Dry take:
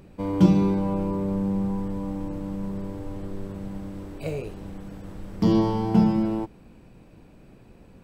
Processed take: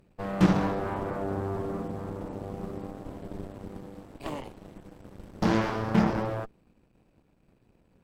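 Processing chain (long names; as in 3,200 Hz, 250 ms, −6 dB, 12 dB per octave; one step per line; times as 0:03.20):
soft clipping −11.5 dBFS, distortion −17 dB
harmonic generator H 3 −11 dB, 7 −26 dB, 8 −17 dB, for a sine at −11.5 dBFS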